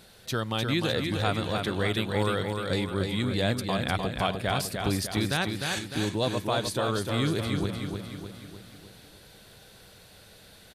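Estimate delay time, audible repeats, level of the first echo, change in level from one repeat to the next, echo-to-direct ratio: 303 ms, 6, −5.0 dB, −6.0 dB, −3.5 dB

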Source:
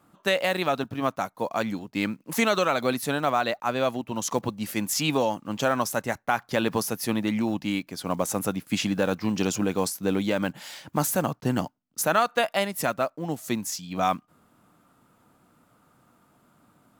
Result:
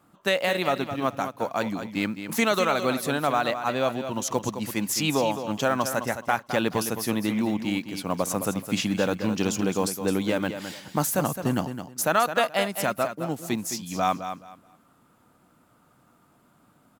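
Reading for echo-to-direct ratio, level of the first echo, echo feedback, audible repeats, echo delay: −9.5 dB, −9.5 dB, 22%, 2, 213 ms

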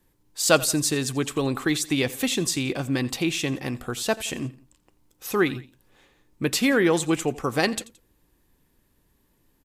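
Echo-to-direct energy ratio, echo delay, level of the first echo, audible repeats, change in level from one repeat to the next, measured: −18.5 dB, 86 ms, −19.5 dB, 2, −6.5 dB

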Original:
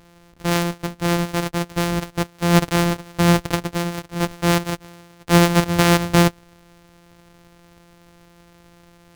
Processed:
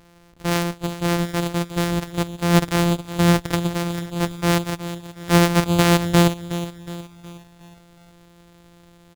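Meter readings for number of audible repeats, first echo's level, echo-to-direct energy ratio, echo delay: 4, −13.0 dB, −12.0 dB, 366 ms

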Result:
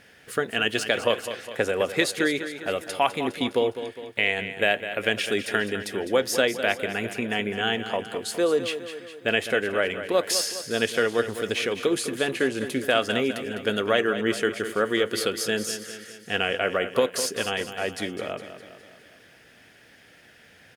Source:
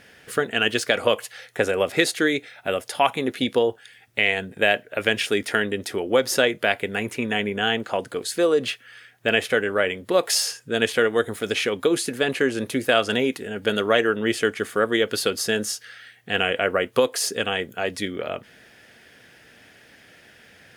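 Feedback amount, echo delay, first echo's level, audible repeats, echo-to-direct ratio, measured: 54%, 205 ms, −11.0 dB, 5, −9.5 dB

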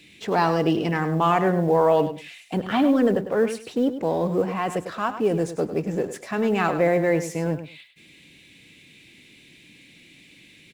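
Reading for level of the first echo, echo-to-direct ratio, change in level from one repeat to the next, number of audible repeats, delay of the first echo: −11.0 dB, −11.0 dB, −15.0 dB, 2, 101 ms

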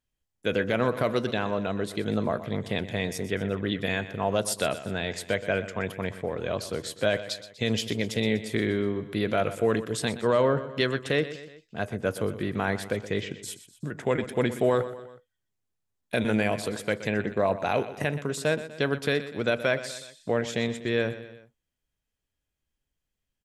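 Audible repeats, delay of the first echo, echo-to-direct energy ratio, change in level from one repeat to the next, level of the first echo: 3, 123 ms, −12.5 dB, −5.5 dB, −14.0 dB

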